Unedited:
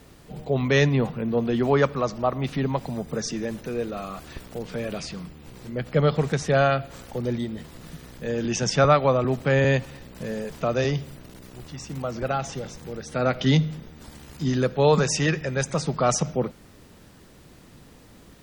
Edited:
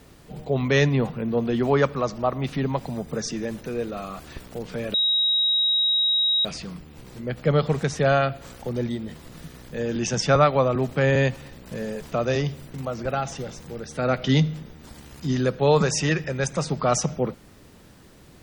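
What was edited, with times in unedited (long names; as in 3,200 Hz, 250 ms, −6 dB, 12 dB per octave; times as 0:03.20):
0:04.94: insert tone 3,810 Hz −18 dBFS 1.51 s
0:11.23–0:11.91: remove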